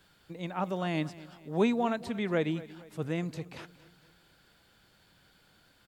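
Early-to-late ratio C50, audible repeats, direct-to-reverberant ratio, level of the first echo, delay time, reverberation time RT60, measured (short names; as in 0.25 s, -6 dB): none, 3, none, -18.0 dB, 0.231 s, none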